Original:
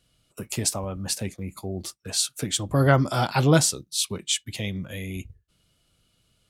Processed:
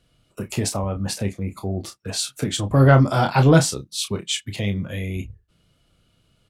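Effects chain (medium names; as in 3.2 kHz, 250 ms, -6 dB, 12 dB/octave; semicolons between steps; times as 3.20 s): treble shelf 3.4 kHz -10 dB; in parallel at -4.5 dB: saturation -16.5 dBFS, distortion -11 dB; on the sum: doubling 30 ms -8 dB; trim +1.5 dB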